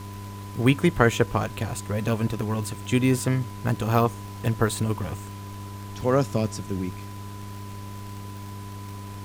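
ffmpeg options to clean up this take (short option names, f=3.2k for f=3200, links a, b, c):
-af "adeclick=t=4,bandreject=f=100.2:t=h:w=4,bandreject=f=200.4:t=h:w=4,bandreject=f=300.6:t=h:w=4,bandreject=f=400.8:t=h:w=4,bandreject=f=1k:w=30,afftdn=nr=30:nf=-37"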